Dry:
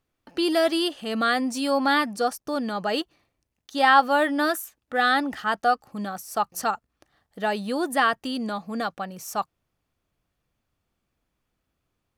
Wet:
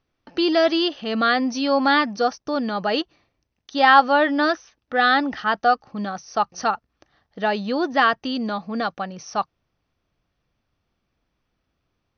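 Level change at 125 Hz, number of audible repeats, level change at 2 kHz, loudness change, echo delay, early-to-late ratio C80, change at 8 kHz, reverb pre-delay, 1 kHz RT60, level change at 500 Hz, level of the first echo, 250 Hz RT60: can't be measured, no echo audible, +3.5 dB, +3.5 dB, no echo audible, no reverb audible, −4.0 dB, no reverb audible, no reverb audible, +3.5 dB, no echo audible, no reverb audible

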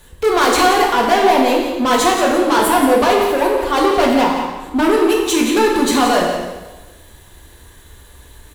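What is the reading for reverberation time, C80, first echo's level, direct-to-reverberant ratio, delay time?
1.2 s, 3.0 dB, −9.5 dB, −2.5 dB, 176 ms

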